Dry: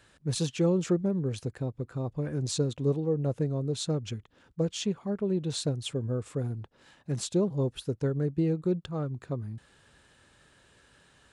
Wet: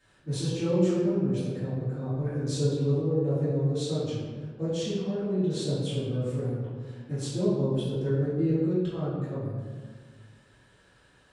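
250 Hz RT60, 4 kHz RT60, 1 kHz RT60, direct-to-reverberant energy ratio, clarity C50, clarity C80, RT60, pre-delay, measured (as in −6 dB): 1.9 s, 0.90 s, 1.4 s, −13.0 dB, −1.5 dB, 1.5 dB, 1.6 s, 3 ms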